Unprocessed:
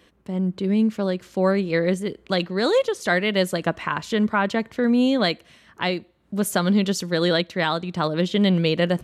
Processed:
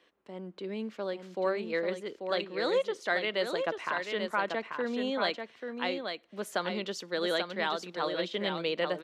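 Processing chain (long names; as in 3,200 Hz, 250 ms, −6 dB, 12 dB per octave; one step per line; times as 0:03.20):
three-way crossover with the lows and the highs turned down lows −21 dB, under 300 Hz, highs −12 dB, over 5,700 Hz
single-tap delay 838 ms −6 dB
level −8 dB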